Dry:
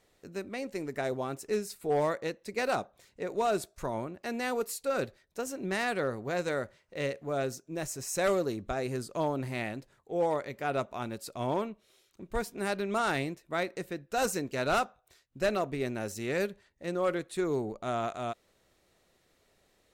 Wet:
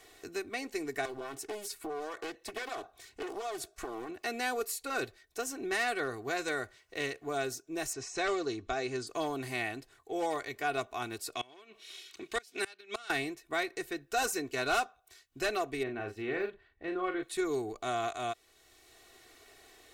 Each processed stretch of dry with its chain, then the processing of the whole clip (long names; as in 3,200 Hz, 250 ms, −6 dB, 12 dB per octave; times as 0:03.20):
0:01.05–0:04.09: downward compressor 12 to 1, threshold −35 dBFS + highs frequency-modulated by the lows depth 0.96 ms
0:07.93–0:09.07: de-essing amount 80% + low-pass filter 6,800 Hz 24 dB per octave
0:11.35–0:13.10: meter weighting curve D + gate with flip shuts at −21 dBFS, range −26 dB
0:15.83–0:17.23: de-essing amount 90% + high-frequency loss of the air 490 metres + double-tracking delay 38 ms −6.5 dB
whole clip: tilt shelving filter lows −4 dB; comb filter 2.7 ms, depth 79%; multiband upward and downward compressor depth 40%; level −2.5 dB